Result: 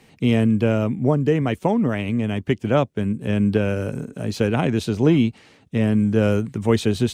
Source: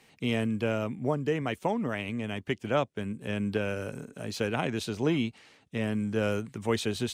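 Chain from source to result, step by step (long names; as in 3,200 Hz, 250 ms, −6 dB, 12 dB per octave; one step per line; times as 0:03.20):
low-shelf EQ 470 Hz +9.5 dB
level +4 dB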